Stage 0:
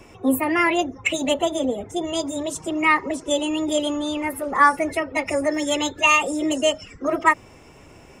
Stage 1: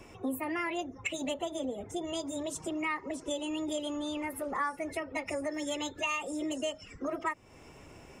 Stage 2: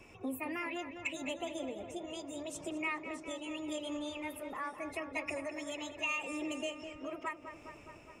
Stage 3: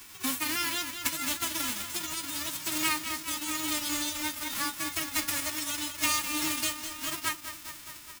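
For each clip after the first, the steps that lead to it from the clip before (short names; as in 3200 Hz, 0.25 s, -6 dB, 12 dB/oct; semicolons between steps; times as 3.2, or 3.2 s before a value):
compressor 3:1, threshold -29 dBFS, peak gain reduction 14 dB; gain -5 dB
bell 2500 Hz +11.5 dB 0.21 oct; tremolo triangle 0.82 Hz, depth 40%; tape echo 0.205 s, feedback 78%, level -9 dB, low-pass 3200 Hz; gain -4.5 dB
spectral whitening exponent 0.1; band shelf 570 Hz -9 dB 1.1 oct; doubler 13 ms -12 dB; gain +8 dB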